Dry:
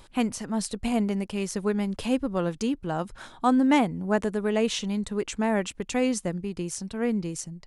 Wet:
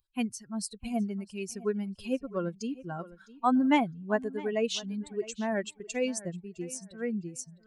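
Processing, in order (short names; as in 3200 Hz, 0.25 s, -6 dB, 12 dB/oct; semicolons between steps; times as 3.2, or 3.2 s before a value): per-bin expansion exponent 2; low shelf 150 Hz -8 dB; on a send: tape echo 0.658 s, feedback 22%, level -17.5 dB, low-pass 5300 Hz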